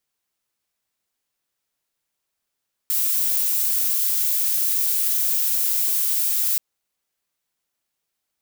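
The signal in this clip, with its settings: noise violet, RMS -21 dBFS 3.68 s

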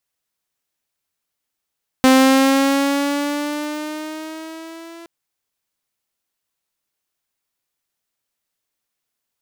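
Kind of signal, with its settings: gliding synth tone saw, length 3.02 s, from 260 Hz, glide +4.5 st, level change -28 dB, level -5.5 dB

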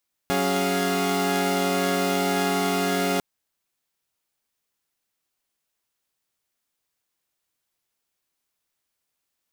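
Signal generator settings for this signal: chord F#3/C#4/G#4/F5 saw, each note -24.5 dBFS 2.90 s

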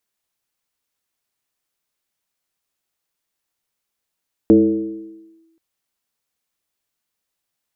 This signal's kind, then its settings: FM tone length 1.08 s, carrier 327 Hz, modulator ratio 0.36, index 0.95, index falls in 0.99 s linear, decay 1.18 s, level -5 dB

